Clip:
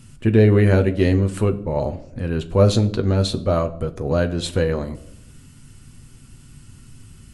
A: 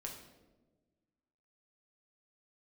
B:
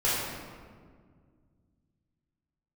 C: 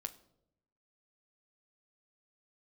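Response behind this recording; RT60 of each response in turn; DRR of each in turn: C; 1.3 s, 1.9 s, 0.80 s; -0.5 dB, -11.0 dB, 6.0 dB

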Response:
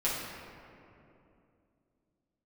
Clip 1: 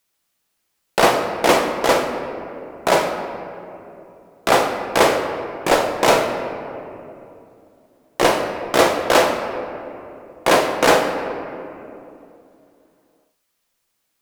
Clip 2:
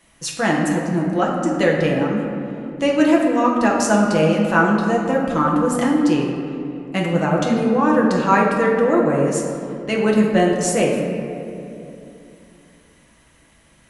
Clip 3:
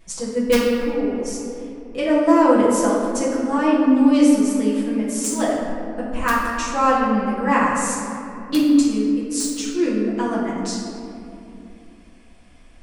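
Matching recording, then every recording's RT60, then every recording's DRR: 3; 2.8 s, 2.8 s, 2.8 s; 2.5 dB, -3.0 dB, -9.0 dB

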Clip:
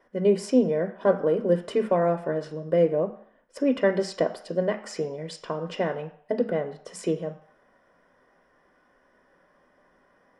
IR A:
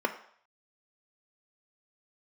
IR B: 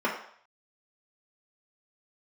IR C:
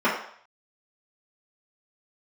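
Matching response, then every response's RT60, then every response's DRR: A; 0.60 s, 0.60 s, 0.60 s; 6.5 dB, -3.5 dB, -8.5 dB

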